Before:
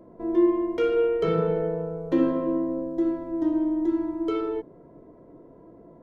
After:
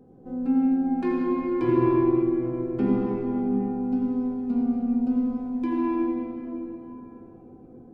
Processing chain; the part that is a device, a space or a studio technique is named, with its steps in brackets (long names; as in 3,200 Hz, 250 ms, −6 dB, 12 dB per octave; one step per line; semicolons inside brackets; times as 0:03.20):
slowed and reverbed (speed change −24%; convolution reverb RT60 3.8 s, pre-delay 76 ms, DRR −1 dB)
level −3 dB